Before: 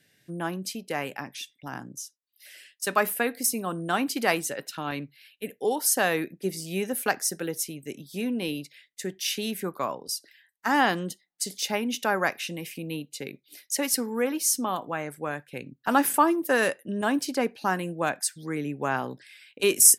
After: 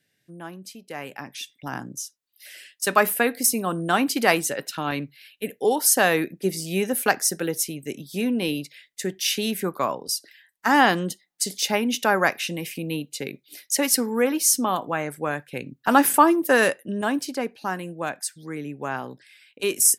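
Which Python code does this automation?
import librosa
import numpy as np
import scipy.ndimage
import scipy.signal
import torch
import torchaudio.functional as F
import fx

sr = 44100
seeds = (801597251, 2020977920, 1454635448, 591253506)

y = fx.gain(x, sr, db=fx.line((0.8, -7.0), (1.55, 5.0), (16.6, 5.0), (17.47, -2.0)))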